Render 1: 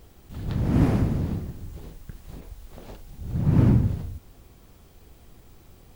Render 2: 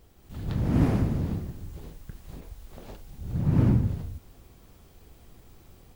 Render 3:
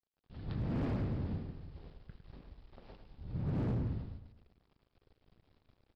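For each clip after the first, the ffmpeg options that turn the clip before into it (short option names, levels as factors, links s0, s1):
-af "dynaudnorm=f=160:g=3:m=1.78,volume=0.473"
-filter_complex "[0:a]aresample=11025,aeval=exprs='sgn(val(0))*max(abs(val(0))-0.00335,0)':c=same,aresample=44100,asplit=2[s0][s1];[s1]adelay=105,lowpass=f=4200:p=1,volume=0.376,asplit=2[s2][s3];[s3]adelay=105,lowpass=f=4200:p=1,volume=0.44,asplit=2[s4][s5];[s5]adelay=105,lowpass=f=4200:p=1,volume=0.44,asplit=2[s6][s7];[s7]adelay=105,lowpass=f=4200:p=1,volume=0.44,asplit=2[s8][s9];[s9]adelay=105,lowpass=f=4200:p=1,volume=0.44[s10];[s0][s2][s4][s6][s8][s10]amix=inputs=6:normalize=0,volume=13.3,asoftclip=hard,volume=0.075,volume=0.376"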